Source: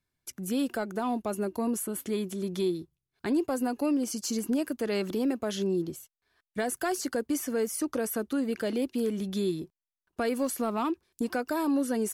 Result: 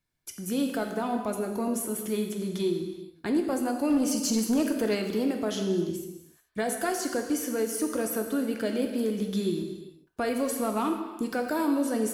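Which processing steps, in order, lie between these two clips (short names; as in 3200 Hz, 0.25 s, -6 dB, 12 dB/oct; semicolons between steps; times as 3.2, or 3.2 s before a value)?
non-linear reverb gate 0.46 s falling, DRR 3.5 dB; 3.9–4.95 sample leveller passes 1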